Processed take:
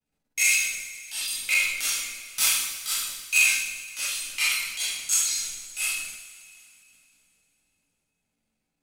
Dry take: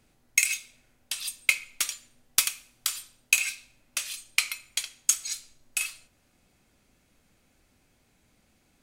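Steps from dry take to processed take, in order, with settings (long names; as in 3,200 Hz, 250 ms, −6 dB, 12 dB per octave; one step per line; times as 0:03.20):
downward expander −53 dBFS
coupled-rooms reverb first 0.59 s, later 3 s, from −17 dB, DRR −6.5 dB
transient designer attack −11 dB, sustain +5 dB
level −2.5 dB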